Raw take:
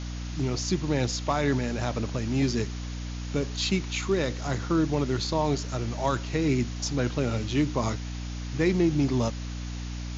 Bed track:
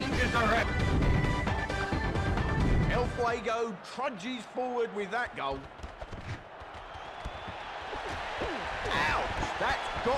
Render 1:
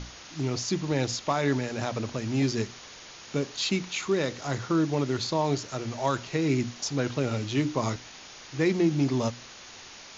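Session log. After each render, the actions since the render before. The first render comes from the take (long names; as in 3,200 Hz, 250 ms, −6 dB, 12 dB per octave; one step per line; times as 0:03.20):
mains-hum notches 60/120/180/240/300 Hz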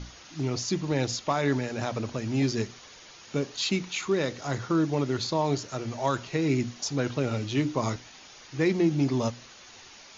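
broadband denoise 6 dB, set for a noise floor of −47 dBFS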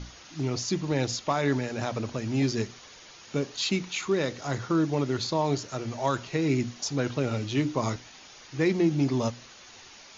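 no processing that can be heard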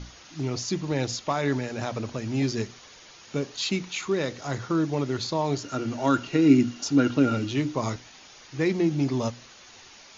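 0:05.64–0:07.52: hollow resonant body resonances 280/1,400/2,800 Hz, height 13 dB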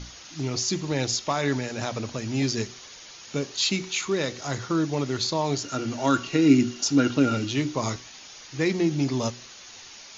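high-shelf EQ 3,100 Hz +8 dB
hum removal 375.7 Hz, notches 29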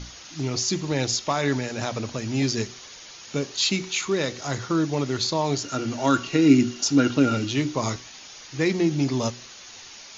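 level +1.5 dB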